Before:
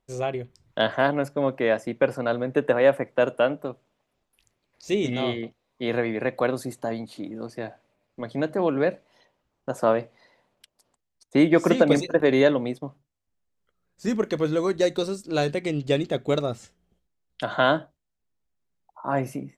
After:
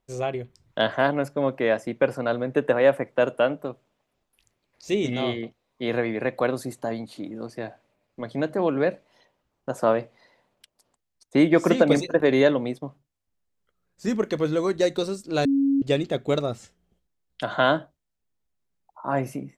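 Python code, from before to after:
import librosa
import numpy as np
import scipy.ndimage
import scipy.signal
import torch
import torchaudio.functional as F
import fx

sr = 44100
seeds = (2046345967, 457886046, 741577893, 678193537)

y = fx.edit(x, sr, fx.bleep(start_s=15.45, length_s=0.37, hz=276.0, db=-17.5), tone=tone)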